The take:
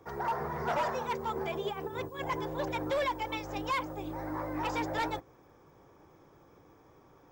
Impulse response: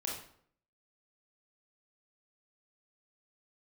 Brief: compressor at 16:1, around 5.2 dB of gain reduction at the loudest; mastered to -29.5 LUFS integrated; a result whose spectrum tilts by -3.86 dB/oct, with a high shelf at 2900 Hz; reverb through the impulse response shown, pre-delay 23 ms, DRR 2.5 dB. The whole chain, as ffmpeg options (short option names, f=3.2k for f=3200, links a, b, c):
-filter_complex "[0:a]highshelf=f=2.9k:g=-3.5,acompressor=threshold=-33dB:ratio=16,asplit=2[a][b];[1:a]atrim=start_sample=2205,adelay=23[c];[b][c]afir=irnorm=-1:irlink=0,volume=-4.5dB[d];[a][d]amix=inputs=2:normalize=0,volume=6.5dB"